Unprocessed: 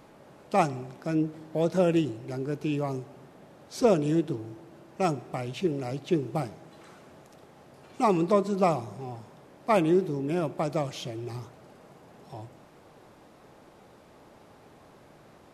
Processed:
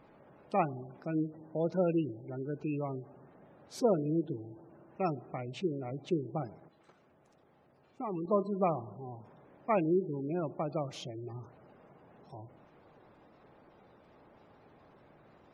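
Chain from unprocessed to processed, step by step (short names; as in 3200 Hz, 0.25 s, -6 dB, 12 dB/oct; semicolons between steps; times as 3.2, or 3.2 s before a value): spectral gate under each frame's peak -25 dB strong; 6.6–8.28 level quantiser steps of 10 dB; gain -6 dB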